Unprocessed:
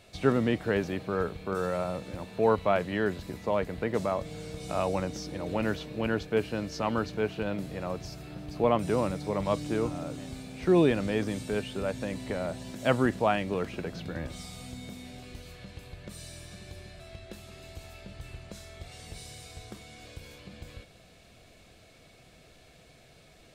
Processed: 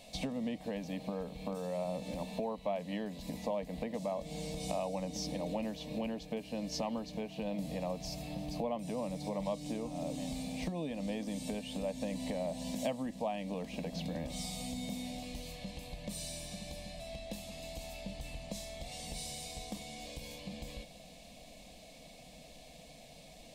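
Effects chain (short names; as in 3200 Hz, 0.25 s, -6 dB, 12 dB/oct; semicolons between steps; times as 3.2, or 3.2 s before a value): compressor 6:1, threshold -36 dBFS, peak gain reduction 17.5 dB; fixed phaser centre 380 Hz, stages 6; gain +5 dB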